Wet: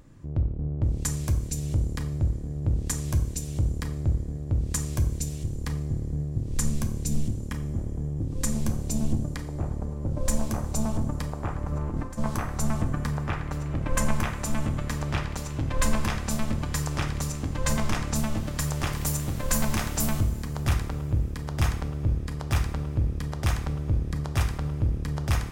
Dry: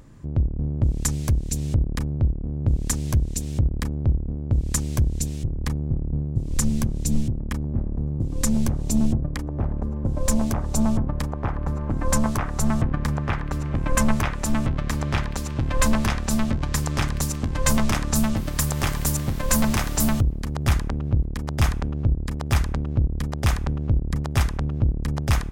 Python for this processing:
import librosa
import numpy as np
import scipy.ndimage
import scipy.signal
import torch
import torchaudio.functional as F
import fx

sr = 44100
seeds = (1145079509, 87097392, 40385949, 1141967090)

y = fx.over_compress(x, sr, threshold_db=-25.0, ratio=-0.5, at=(11.62, 12.17), fade=0.02)
y = fx.high_shelf(y, sr, hz=8900.0, db=-7.0, at=(16.9, 18.93))
y = fx.rev_double_slope(y, sr, seeds[0], early_s=0.59, late_s=4.2, knee_db=-17, drr_db=5.5)
y = y * librosa.db_to_amplitude(-5.0)